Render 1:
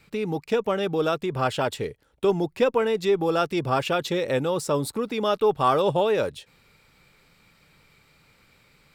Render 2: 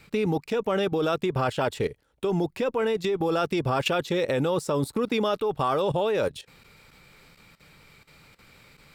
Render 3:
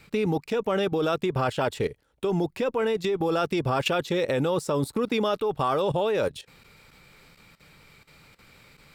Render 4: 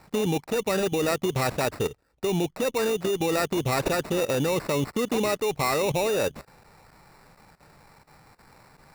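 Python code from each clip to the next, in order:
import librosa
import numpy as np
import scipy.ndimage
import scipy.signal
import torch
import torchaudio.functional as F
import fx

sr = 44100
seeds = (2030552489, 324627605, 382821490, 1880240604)

y1 = fx.level_steps(x, sr, step_db=15)
y1 = y1 * 10.0 ** (6.0 / 20.0)
y2 = y1
y3 = fx.sample_hold(y2, sr, seeds[0], rate_hz=3200.0, jitter_pct=0)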